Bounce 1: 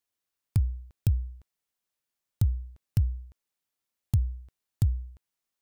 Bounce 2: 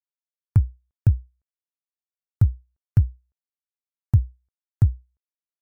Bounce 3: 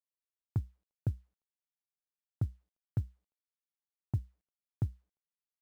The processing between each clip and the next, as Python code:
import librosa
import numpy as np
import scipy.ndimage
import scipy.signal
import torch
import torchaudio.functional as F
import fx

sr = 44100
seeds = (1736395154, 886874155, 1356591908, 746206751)

y1 = fx.high_shelf_res(x, sr, hz=2300.0, db=-13.0, q=1.5)
y1 = fx.upward_expand(y1, sr, threshold_db=-42.0, expansion=2.5)
y1 = y1 * librosa.db_to_amplitude(9.0)
y2 = fx.bandpass_q(y1, sr, hz=430.0, q=0.78)
y2 = fx.quant_companded(y2, sr, bits=8)
y2 = y2 * librosa.db_to_amplitude(-5.5)